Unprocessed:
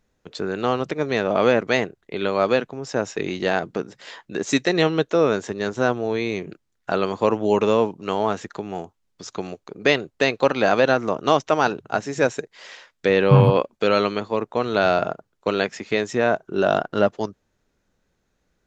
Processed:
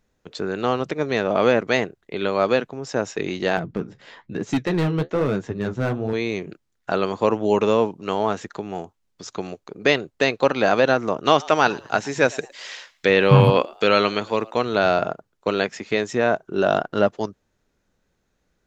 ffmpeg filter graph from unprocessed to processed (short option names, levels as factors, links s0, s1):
-filter_complex "[0:a]asettb=1/sr,asplit=3[s0][s1][s2];[s0]atrim=end=3.574[s3];[s1]atrim=start=3.57:end=6.13,asetpts=PTS-STARTPTS,afade=t=in:d=0.004:c=qsin,afade=t=out:st=2.556:d=0.004:c=qsin,bass=f=250:g=12,treble=f=4000:g=-8,flanger=delay=5.8:depth=8.5:regen=-50:speed=1.1:shape=sinusoidal,volume=6.31,asoftclip=hard,volume=0.158[s4];[s2]atrim=start=6.126[s5];[s3][s4]acrossfade=d=0.004:c1=hsin:c2=qsin[s6];[s6][s5]acrossfade=d=0.004:c1=qsin:c2=hsin,asettb=1/sr,asplit=3[s7][s8][s9];[s7]atrim=end=11.254[s10];[s8]atrim=start=11.25:end=14.62,asetpts=PTS-STARTPTS,afade=t=in:d=0.004:c=qsin,afade=t=out:st=3.366:d=0.004:c=qsin,highshelf=f=2000:g=9.5,asplit=3[s11][s12][s13];[s12]adelay=110,afreqshift=120,volume=0.0708[s14];[s13]adelay=220,afreqshift=240,volume=0.0219[s15];[s11][s14][s15]amix=inputs=3:normalize=0,atrim=end_sample=148617,acrossover=split=3900[s16][s17];[s17]acompressor=threshold=0.0141:ratio=4:attack=1:release=60[s18];[s16][s18]amix=inputs=2:normalize=0[s19];[s9]atrim=start=14.616[s20];[s10][s19]acrossfade=d=0.004:c1=hsin:c2=qsin[s21];[s21][s20]acrossfade=d=0.004:c1=qsin:c2=hsin"